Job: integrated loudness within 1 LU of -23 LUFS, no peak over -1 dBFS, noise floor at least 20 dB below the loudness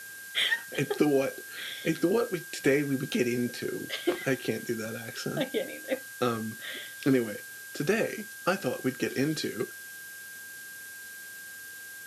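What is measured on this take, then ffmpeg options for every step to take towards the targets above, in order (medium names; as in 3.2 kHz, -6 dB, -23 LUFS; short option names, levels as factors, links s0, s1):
steady tone 1.6 kHz; tone level -43 dBFS; noise floor -44 dBFS; noise floor target -50 dBFS; loudness -30.0 LUFS; peak level -12.0 dBFS; loudness target -23.0 LUFS
-> -af "bandreject=f=1600:w=30"
-af "afftdn=nr=6:nf=-44"
-af "volume=2.24"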